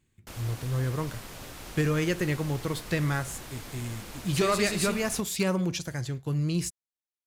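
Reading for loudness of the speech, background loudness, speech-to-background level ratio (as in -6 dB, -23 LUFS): -29.5 LUFS, -42.5 LUFS, 13.0 dB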